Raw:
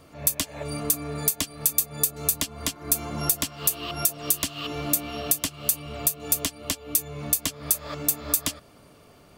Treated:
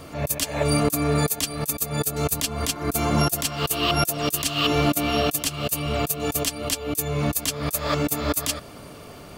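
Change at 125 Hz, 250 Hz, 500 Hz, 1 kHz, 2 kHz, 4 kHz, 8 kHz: +10.5 dB, +9.5 dB, +10.5 dB, +10.0 dB, +8.0 dB, +6.0 dB, -1.5 dB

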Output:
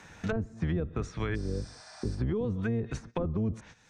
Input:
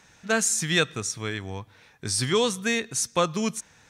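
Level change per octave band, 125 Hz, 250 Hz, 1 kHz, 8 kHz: +2.0 dB, -2.5 dB, -12.5 dB, -27.0 dB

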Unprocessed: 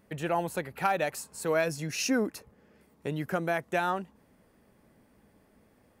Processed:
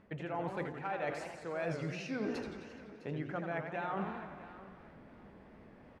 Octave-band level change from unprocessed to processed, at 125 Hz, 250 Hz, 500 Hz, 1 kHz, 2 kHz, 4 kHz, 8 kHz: -4.5 dB, -6.5 dB, -8.0 dB, -8.5 dB, -8.5 dB, -12.5 dB, -21.0 dB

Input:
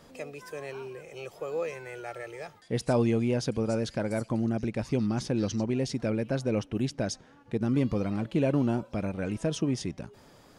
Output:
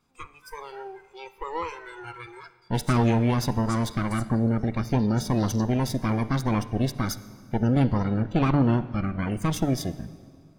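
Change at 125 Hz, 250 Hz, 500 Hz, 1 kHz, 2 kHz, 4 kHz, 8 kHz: +7.0 dB, +4.0 dB, -1.0 dB, +9.5 dB, +4.0 dB, +3.5 dB, +3.5 dB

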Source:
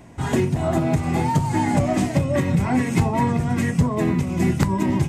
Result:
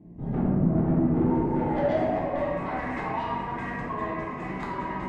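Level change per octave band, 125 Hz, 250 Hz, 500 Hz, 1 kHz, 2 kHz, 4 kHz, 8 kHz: -9.5 dB, -6.0 dB, -3.5 dB, -4.0 dB, -5.5 dB, -12.5 dB, under -25 dB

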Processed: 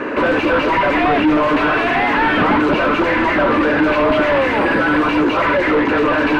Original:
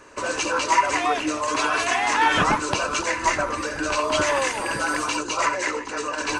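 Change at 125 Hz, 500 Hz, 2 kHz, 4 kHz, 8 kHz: +10.0 dB, +11.0 dB, +7.0 dB, +1.5 dB, under -15 dB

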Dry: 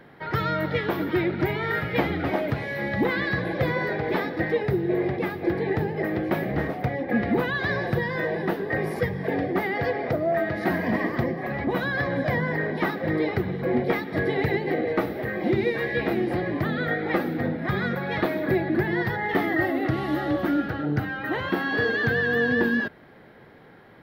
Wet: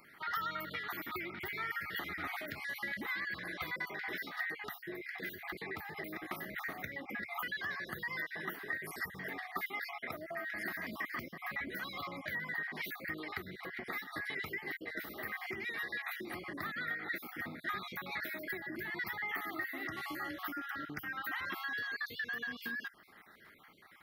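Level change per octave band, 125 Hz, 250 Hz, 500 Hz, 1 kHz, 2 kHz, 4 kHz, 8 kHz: -25.5 dB, -22.0 dB, -23.5 dB, -13.0 dB, -9.5 dB, -8.0 dB, no reading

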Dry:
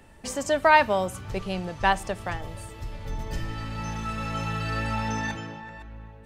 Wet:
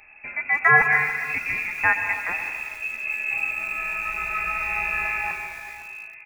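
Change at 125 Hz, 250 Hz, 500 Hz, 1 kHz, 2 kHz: -9.5 dB, -13.5 dB, -9.5 dB, -2.0 dB, +10.0 dB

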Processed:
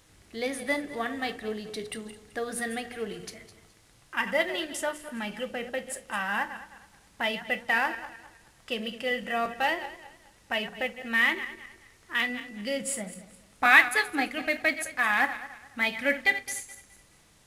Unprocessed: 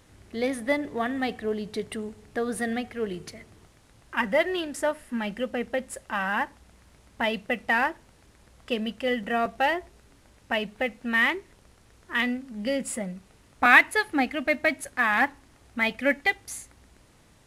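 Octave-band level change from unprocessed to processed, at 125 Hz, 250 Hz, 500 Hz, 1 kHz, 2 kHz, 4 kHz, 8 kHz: no reading, -6.0 dB, -4.5 dB, -2.5 dB, -1.0 dB, +0.5 dB, +2.5 dB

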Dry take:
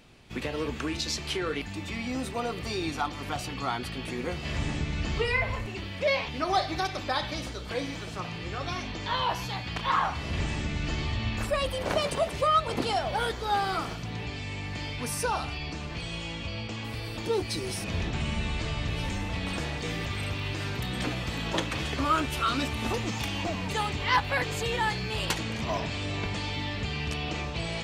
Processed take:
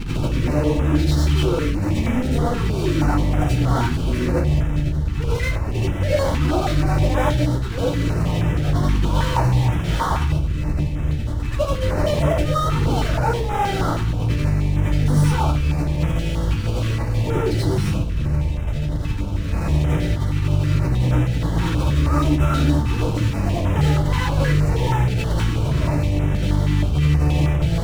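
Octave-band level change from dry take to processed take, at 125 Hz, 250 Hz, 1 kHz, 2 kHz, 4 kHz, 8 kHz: +16.5 dB, +12.0 dB, +3.5 dB, +1.5 dB, +0.5 dB, +3.0 dB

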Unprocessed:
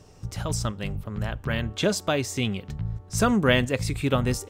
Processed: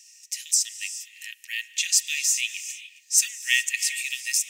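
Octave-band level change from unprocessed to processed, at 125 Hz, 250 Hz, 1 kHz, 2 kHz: under -40 dB, under -40 dB, under -40 dB, +3.0 dB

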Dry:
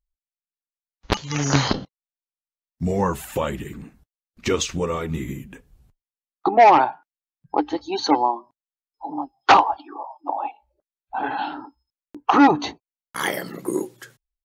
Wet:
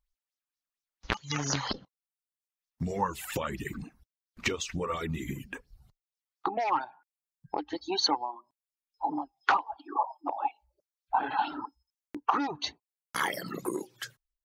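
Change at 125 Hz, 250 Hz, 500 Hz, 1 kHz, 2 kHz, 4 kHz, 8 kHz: -10.5 dB, -13.0 dB, -13.0 dB, -11.0 dB, -7.5 dB, -5.0 dB, -6.5 dB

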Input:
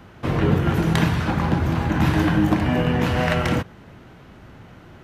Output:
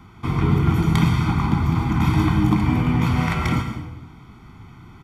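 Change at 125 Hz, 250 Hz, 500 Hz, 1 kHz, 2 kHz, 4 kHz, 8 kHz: +2.5 dB, +0.5 dB, -7.0 dB, -0.5 dB, -3.0 dB, -2.5 dB, no reading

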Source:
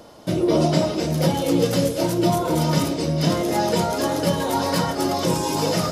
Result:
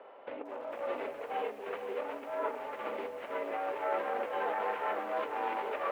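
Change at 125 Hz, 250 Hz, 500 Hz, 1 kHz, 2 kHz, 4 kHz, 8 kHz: under -40 dB, -27.5 dB, -13.0 dB, -9.5 dB, -8.0 dB, -25.0 dB, under -35 dB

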